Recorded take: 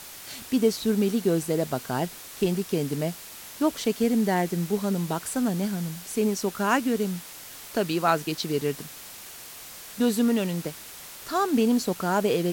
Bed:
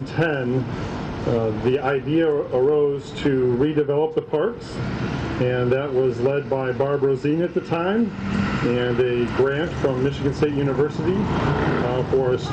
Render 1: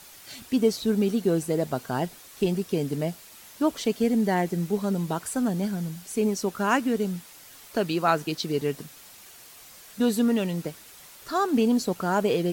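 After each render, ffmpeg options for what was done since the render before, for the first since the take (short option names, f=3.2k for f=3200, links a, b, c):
-af "afftdn=nr=7:nf=-43"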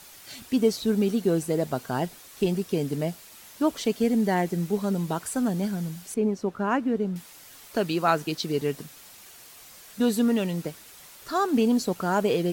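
-filter_complex "[0:a]asettb=1/sr,asplit=3[a][b][c];[a]atrim=end=6.144[d];[b]atrim=start=6.14:end=7.16,asetpts=PTS-STARTPTS,afade=t=in:d=0.004:c=qsin,afade=t=out:st=1.016:d=0.004:c=qsin,lowpass=f=1.1k:p=1[e];[c]atrim=start=7.156[f];[d][e]acrossfade=d=0.004:c1=hsin:c2=qsin[g];[g][f]acrossfade=d=0.004:c1=qsin:c2=hsin"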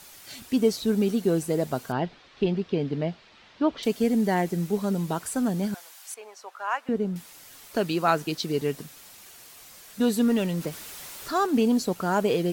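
-filter_complex "[0:a]asettb=1/sr,asplit=3[a][b][c];[a]atrim=end=1.924[d];[b]atrim=start=1.92:end=3.83,asetpts=PTS-STARTPTS,afade=t=in:d=0.004:c=qsin,afade=t=out:st=1.906:d=0.004:c=qsin,lowpass=f=4.1k:w=0.5412,lowpass=f=4.1k:w=1.3066[e];[c]atrim=start=3.826[f];[d][e]acrossfade=d=0.004:c1=hsin:c2=qsin[g];[g][f]acrossfade=d=0.004:c1=qsin:c2=hsin,asettb=1/sr,asplit=3[h][i][j];[h]atrim=end=5.744[k];[i]atrim=start=5.74:end=6.89,asetpts=PTS-STARTPTS,afade=t=in:d=0.004:c=qsin,afade=t=out:st=1.146:d=0.004:c=qsin,highpass=f=730:w=0.5412,highpass=f=730:w=1.3066[l];[j]atrim=start=6.886[m];[k][l]acrossfade=d=0.004:c1=hsin:c2=qsin[n];[n][m]acrossfade=d=0.004:c1=qsin:c2=hsin,asettb=1/sr,asplit=3[o][p][q];[o]atrim=end=10.204[r];[p]atrim=start=10.2:end=11.47,asetpts=PTS-STARTPTS,afade=t=in:d=0.004:c=qsin,afade=t=out:st=1.266:d=0.004:c=qsin,aeval=exprs='val(0)+0.5*0.0106*sgn(val(0))':c=same[s];[q]atrim=start=11.466[t];[r][s]acrossfade=d=0.004:c1=hsin:c2=qsin[u];[u][t]acrossfade=d=0.004:c1=qsin:c2=hsin"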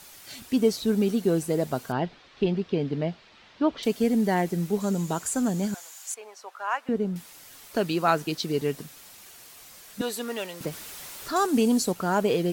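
-filter_complex "[0:a]asettb=1/sr,asplit=3[a][b][c];[a]atrim=end=4.804[d];[b]atrim=start=4.8:end=6.15,asetpts=PTS-STARTPTS,afade=t=in:d=0.004:c=qsin,afade=t=out:st=1.346:d=0.004:c=qsin,equalizer=f=7k:t=o:w=0.28:g=12.5[e];[c]atrim=start=6.146[f];[d][e]acrossfade=d=0.004:c1=hsin:c2=qsin[g];[g][f]acrossfade=d=0.004:c1=qsin:c2=hsin,asettb=1/sr,asplit=3[h][i][j];[h]atrim=end=10.014[k];[i]atrim=start=10.01:end=10.61,asetpts=PTS-STARTPTS,afade=t=in:d=0.004:c=qsin,afade=t=out:st=0.596:d=0.004:c=qsin,highpass=560[l];[j]atrim=start=10.606[m];[k][l]acrossfade=d=0.004:c1=hsin:c2=qsin[n];[n][m]acrossfade=d=0.004:c1=qsin:c2=hsin,asettb=1/sr,asplit=3[o][p][q];[o]atrim=end=11.364[r];[p]atrim=start=11.36:end=11.92,asetpts=PTS-STARTPTS,afade=t=in:d=0.004:c=qsin,afade=t=out:st=0.556:d=0.004:c=qsin,equalizer=f=9k:w=0.79:g=9[s];[q]atrim=start=11.916[t];[r][s]acrossfade=d=0.004:c1=hsin:c2=qsin[u];[u][t]acrossfade=d=0.004:c1=qsin:c2=hsin"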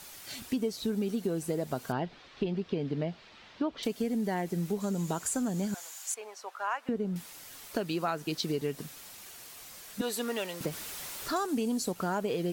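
-af "acompressor=threshold=-28dB:ratio=6"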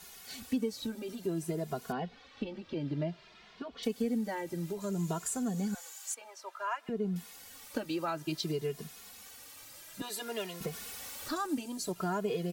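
-filter_complex "[0:a]asplit=2[a][b];[b]adelay=2.4,afreqshift=0.57[c];[a][c]amix=inputs=2:normalize=1"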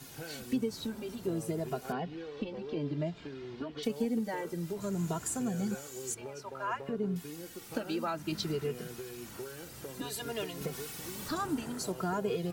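-filter_complex "[1:a]volume=-24.5dB[a];[0:a][a]amix=inputs=2:normalize=0"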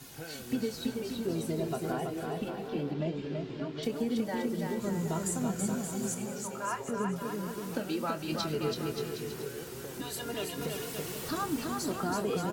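-filter_complex "[0:a]asplit=2[a][b];[b]adelay=25,volume=-12dB[c];[a][c]amix=inputs=2:normalize=0,aecho=1:1:330|577.5|763.1|902.3|1007:0.631|0.398|0.251|0.158|0.1"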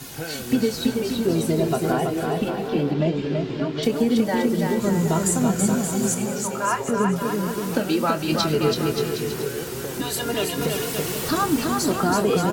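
-af "volume=11.5dB"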